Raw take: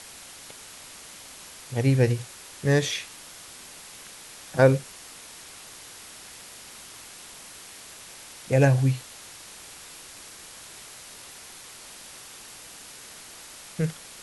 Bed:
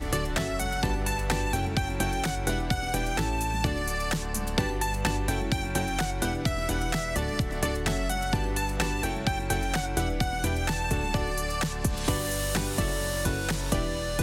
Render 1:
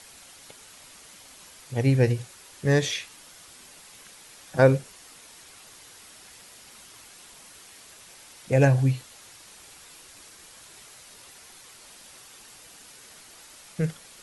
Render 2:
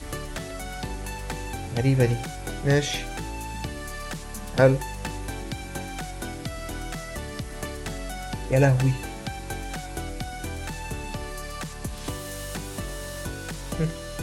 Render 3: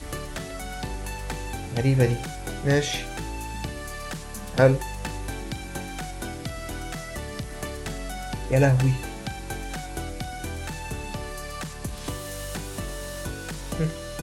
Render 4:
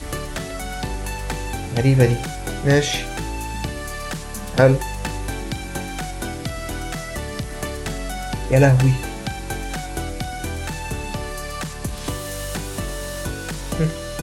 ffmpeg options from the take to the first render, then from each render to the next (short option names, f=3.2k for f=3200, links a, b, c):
-af "afftdn=nr=6:nf=-45"
-filter_complex "[1:a]volume=-6dB[a];[0:a][a]amix=inputs=2:normalize=0"
-filter_complex "[0:a]asplit=2[a][b];[b]adelay=39,volume=-14dB[c];[a][c]amix=inputs=2:normalize=0"
-af "volume=5.5dB,alimiter=limit=-3dB:level=0:latency=1"